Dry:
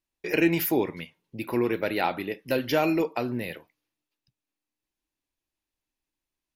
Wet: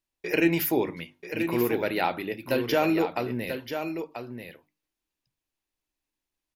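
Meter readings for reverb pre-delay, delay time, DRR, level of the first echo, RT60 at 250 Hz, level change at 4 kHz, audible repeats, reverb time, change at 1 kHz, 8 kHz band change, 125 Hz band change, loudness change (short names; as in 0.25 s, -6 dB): none, 0.987 s, none, -8.0 dB, none, +0.5 dB, 1, none, +0.5 dB, +0.5 dB, 0.0 dB, -0.5 dB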